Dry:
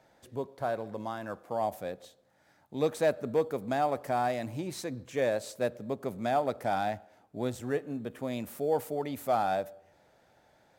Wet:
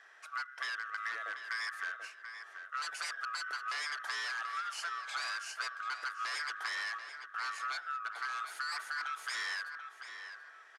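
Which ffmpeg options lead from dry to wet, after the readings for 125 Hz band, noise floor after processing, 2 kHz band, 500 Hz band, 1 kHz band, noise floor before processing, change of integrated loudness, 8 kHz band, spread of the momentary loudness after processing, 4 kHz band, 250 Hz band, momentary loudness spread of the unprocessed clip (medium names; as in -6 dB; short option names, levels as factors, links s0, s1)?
under -40 dB, -56 dBFS, +7.5 dB, -30.5 dB, -6.5 dB, -66 dBFS, -5.5 dB, +1.0 dB, 9 LU, +6.5 dB, under -35 dB, 11 LU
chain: -filter_complex "[0:a]afftfilt=real='real(if(lt(b,960),b+48*(1-2*mod(floor(b/48),2)),b),0)':imag='imag(if(lt(b,960),b+48*(1-2*mod(floor(b/48),2)),b),0)':win_size=2048:overlap=0.75,bandreject=f=1200:w=10,aeval=exprs='0.0316*(abs(mod(val(0)/0.0316+3,4)-2)-1)':c=same,acompressor=threshold=0.00891:ratio=12,aeval=exprs='0.0708*(cos(1*acos(clip(val(0)/0.0708,-1,1)))-cos(1*PI/2))+0.002*(cos(8*acos(clip(val(0)/0.0708,-1,1)))-cos(8*PI/2))':c=same,highpass=f=480:w=0.5412,highpass=f=480:w=1.3066,equalizer=f=540:t=q:w=4:g=-6,equalizer=f=1100:t=q:w=4:g=4,equalizer=f=2200:t=q:w=4:g=7,equalizer=f=7700:t=q:w=4:g=-5,lowpass=f=9500:w=0.5412,lowpass=f=9500:w=1.3066,asplit=2[s0][s1];[s1]adelay=736,lowpass=f=3300:p=1,volume=0.398,asplit=2[s2][s3];[s3]adelay=736,lowpass=f=3300:p=1,volume=0.31,asplit=2[s4][s5];[s5]adelay=736,lowpass=f=3300:p=1,volume=0.31,asplit=2[s6][s7];[s7]adelay=736,lowpass=f=3300:p=1,volume=0.31[s8];[s2][s4][s6][s8]amix=inputs=4:normalize=0[s9];[s0][s9]amix=inputs=2:normalize=0,volume=1.58"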